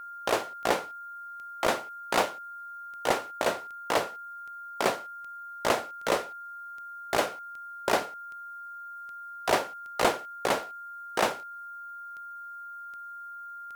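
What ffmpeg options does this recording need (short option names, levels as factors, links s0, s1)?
-af "adeclick=t=4,bandreject=f=1400:w=30,agate=range=0.0891:threshold=0.02"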